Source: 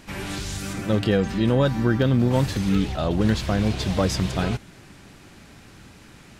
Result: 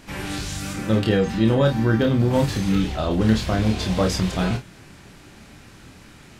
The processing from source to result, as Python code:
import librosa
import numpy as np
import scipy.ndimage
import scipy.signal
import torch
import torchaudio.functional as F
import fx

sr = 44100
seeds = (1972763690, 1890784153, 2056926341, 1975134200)

y = fx.room_early_taps(x, sr, ms=(27, 50), db=(-4.5, -11.5))